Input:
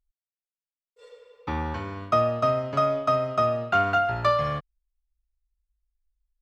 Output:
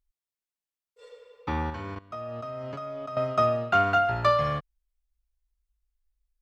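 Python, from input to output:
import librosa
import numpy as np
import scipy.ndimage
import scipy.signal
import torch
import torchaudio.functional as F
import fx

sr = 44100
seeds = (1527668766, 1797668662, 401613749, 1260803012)

y = fx.level_steps(x, sr, step_db=18, at=(1.7, 3.17))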